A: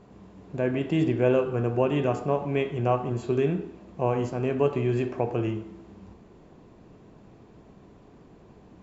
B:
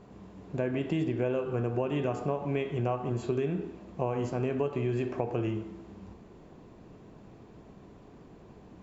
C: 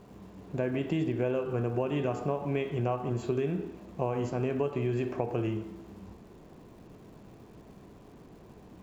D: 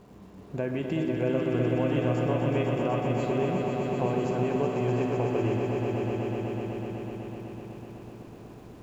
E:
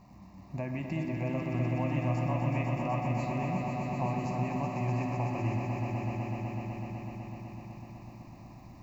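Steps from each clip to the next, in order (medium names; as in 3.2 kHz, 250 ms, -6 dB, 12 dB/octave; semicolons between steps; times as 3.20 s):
compression 6:1, threshold -26 dBFS, peak gain reduction 9.5 dB
crackle 510 per s -56 dBFS
echo with a slow build-up 125 ms, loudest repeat 5, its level -6.5 dB
static phaser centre 2.2 kHz, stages 8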